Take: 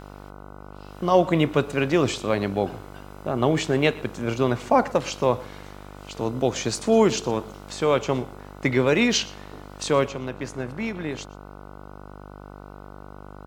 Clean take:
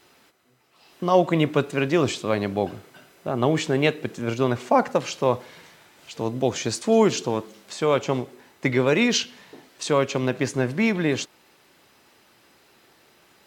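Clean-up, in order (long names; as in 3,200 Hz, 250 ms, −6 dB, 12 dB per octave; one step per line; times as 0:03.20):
hum removal 49.6 Hz, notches 30
echo removal 119 ms −21.5 dB
level correction +8 dB, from 0:10.09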